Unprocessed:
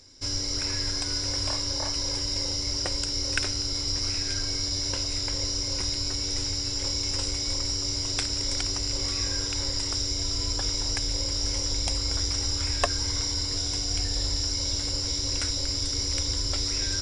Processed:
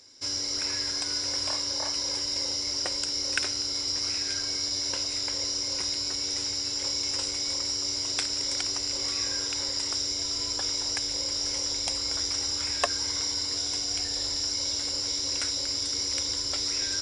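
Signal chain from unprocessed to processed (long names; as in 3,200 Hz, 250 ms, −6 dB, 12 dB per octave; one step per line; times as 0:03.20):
high-pass filter 410 Hz 6 dB per octave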